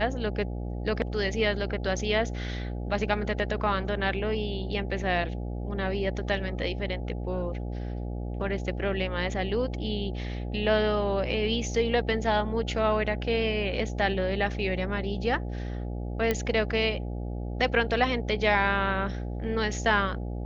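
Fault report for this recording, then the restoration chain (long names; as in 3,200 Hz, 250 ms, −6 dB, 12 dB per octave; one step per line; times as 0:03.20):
mains buzz 60 Hz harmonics 14 −33 dBFS
0:16.31: click −12 dBFS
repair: click removal
hum removal 60 Hz, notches 14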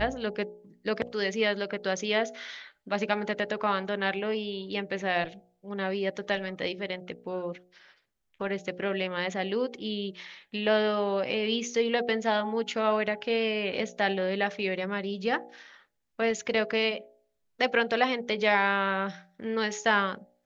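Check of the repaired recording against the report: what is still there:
none of them is left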